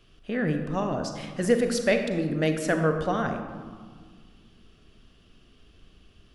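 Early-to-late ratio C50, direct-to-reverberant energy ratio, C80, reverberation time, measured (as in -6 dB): 6.5 dB, 5.5 dB, 8.0 dB, 1.7 s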